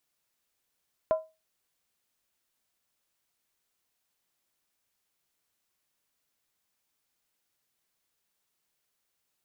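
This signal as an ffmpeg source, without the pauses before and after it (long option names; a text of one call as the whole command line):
ffmpeg -f lavfi -i "aevalsrc='0.126*pow(10,-3*t/0.26)*sin(2*PI*636*t)+0.0335*pow(10,-3*t/0.206)*sin(2*PI*1013.8*t)+0.00891*pow(10,-3*t/0.178)*sin(2*PI*1358.5*t)+0.00237*pow(10,-3*t/0.172)*sin(2*PI*1460.3*t)+0.000631*pow(10,-3*t/0.16)*sin(2*PI*1687.3*t)':duration=0.63:sample_rate=44100" out.wav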